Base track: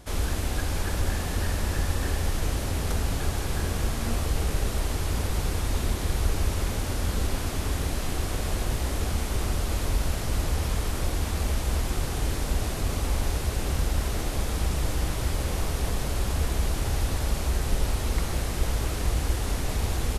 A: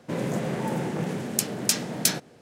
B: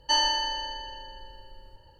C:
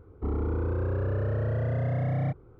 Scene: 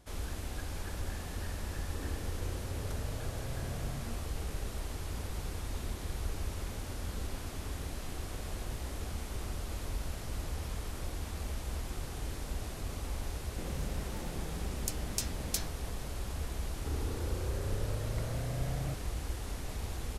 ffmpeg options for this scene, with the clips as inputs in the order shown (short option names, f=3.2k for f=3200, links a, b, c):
-filter_complex "[3:a]asplit=2[a][b];[0:a]volume=-11.5dB[c];[1:a]acrossover=split=130|3000[d][e][f];[e]acompressor=threshold=-31dB:ratio=6:attack=3.2:release=140:knee=2.83:detection=peak[g];[d][g][f]amix=inputs=3:normalize=0[h];[a]atrim=end=2.59,asetpts=PTS-STARTPTS,volume=-15dB,afade=t=in:d=0.004:c=hsin,afade=t=out:st=2.586:d=0.004:c=hsin,adelay=1700[i];[h]atrim=end=2.41,asetpts=PTS-STARTPTS,volume=-12dB,afade=t=in:d=0.004:c=hsin,afade=t=out:st=2.406:d=0.004:c=hsin,adelay=13490[j];[b]atrim=end=2.59,asetpts=PTS-STARTPTS,volume=-10dB,afade=t=in:d=0.004:c=hsin,afade=t=out:st=2.586:d=0.004:c=hsin,adelay=16620[k];[c][i][j][k]amix=inputs=4:normalize=0"